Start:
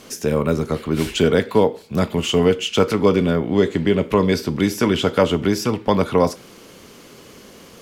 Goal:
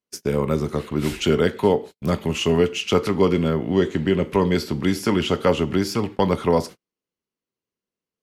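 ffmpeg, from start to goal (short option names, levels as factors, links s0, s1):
-af "asetrate=41895,aresample=44100,agate=range=0.00562:threshold=0.0316:ratio=16:detection=peak,volume=0.75"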